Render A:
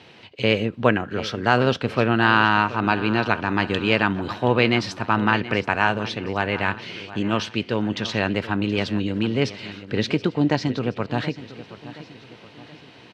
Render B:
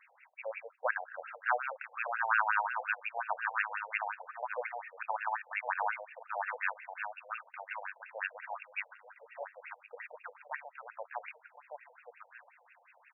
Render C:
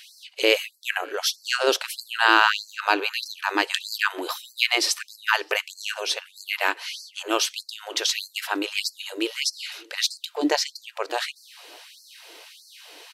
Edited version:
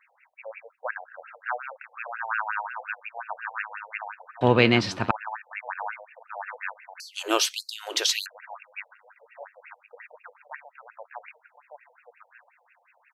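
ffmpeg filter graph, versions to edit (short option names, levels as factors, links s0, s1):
-filter_complex "[1:a]asplit=3[s0][s1][s2];[s0]atrim=end=4.412[s3];[0:a]atrim=start=4.408:end=5.112[s4];[s1]atrim=start=5.108:end=7.002[s5];[2:a]atrim=start=6.998:end=8.262[s6];[s2]atrim=start=8.258[s7];[s3][s4]acrossfade=d=0.004:c1=hsin:c2=hsin[s8];[s8][s5]acrossfade=d=0.004:c1=hsin:c2=hsin[s9];[s9][s6]acrossfade=d=0.004:c1=hsin:c2=hsin[s10];[s10][s7]acrossfade=d=0.004:c1=hsin:c2=hsin"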